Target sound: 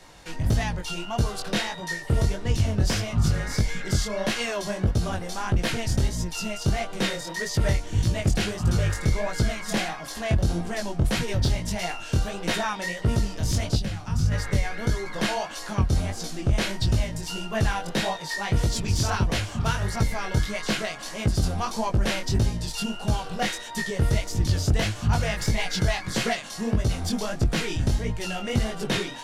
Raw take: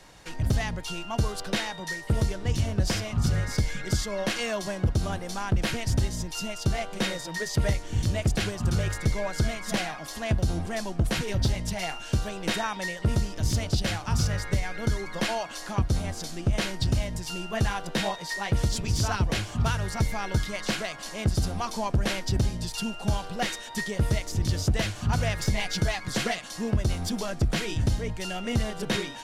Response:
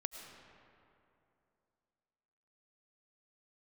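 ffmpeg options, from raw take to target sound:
-filter_complex "[0:a]asettb=1/sr,asplit=3[s0][s1][s2];[s0]atrim=end=13.774[s3];[s1]atrim=start=13.77:end=14.32,asetpts=PTS-STARTPTS,afade=t=in:d=0.004:c=qsin,afade=t=out:st=0.546:d=0.004:c=qsin,acrossover=split=260[s4][s5];[s5]acompressor=threshold=0.0126:ratio=10[s6];[s4][s6]amix=inputs=2:normalize=0[s7];[s2]atrim=start=14.316[s8];[s3][s7]acrossfade=d=0.004:c1=hsin:c2=qsin[s9];[s9][s8]acrossfade=d=0.004:c1=qsin:c2=hsin,flanger=delay=17:depth=7.4:speed=1.6,volume=1.78"

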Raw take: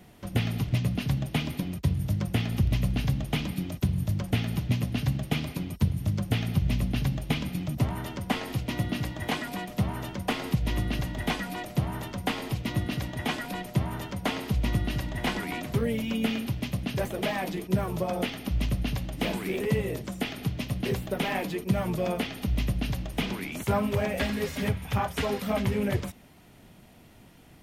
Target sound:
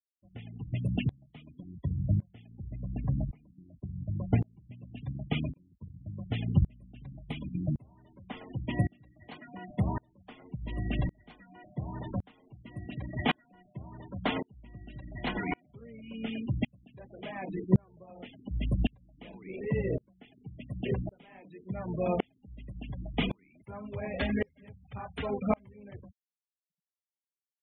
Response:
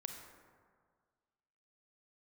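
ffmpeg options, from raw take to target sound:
-filter_complex "[0:a]asettb=1/sr,asplit=3[s0][s1][s2];[s0]atrim=end=2.554[s3];[s1]atrim=start=2.55:end=4.55,asetpts=PTS-STARTPTS,afade=t=in:d=0.004:c=qsin,afade=t=out:st=1.996:d=0.004:c=qsin,lowpass=1900[s4];[s2]atrim=start=4.546[s5];[s3][s4]acrossfade=d=0.004:c1=hsin:c2=qsin[s6];[s6][s5]acrossfade=d=0.004:c1=qsin:c2=hsin,afftfilt=real='re*gte(hypot(re,im),0.0316)':imag='im*gte(hypot(re,im),0.0316)':win_size=1024:overlap=0.75,aeval=exprs='val(0)*pow(10,-35*if(lt(mod(-0.9*n/s,1),2*abs(-0.9)/1000),1-mod(-0.9*n/s,1)/(2*abs(-0.9)/1000),(mod(-0.9*n/s,1)-2*abs(-0.9)/1000)/(1-2*abs(-0.9)/1000))/20)':c=same,volume=1.5"

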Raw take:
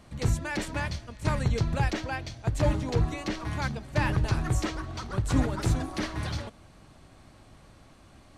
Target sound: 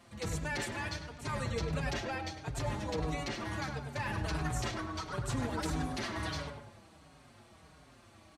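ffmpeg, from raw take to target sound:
-filter_complex "[0:a]highpass=62,lowshelf=f=420:g=-6,alimiter=level_in=1.19:limit=0.0631:level=0:latency=1:release=13,volume=0.841,asplit=2[s0][s1];[s1]adelay=101,lowpass=f=1800:p=1,volume=0.631,asplit=2[s2][s3];[s3]adelay=101,lowpass=f=1800:p=1,volume=0.5,asplit=2[s4][s5];[s5]adelay=101,lowpass=f=1800:p=1,volume=0.5,asplit=2[s6][s7];[s7]adelay=101,lowpass=f=1800:p=1,volume=0.5,asplit=2[s8][s9];[s9]adelay=101,lowpass=f=1800:p=1,volume=0.5,asplit=2[s10][s11];[s11]adelay=101,lowpass=f=1800:p=1,volume=0.5[s12];[s0][s2][s4][s6][s8][s10][s12]amix=inputs=7:normalize=0,asplit=2[s13][s14];[s14]adelay=5.3,afreqshift=-1.5[s15];[s13][s15]amix=inputs=2:normalize=1,volume=1.12"

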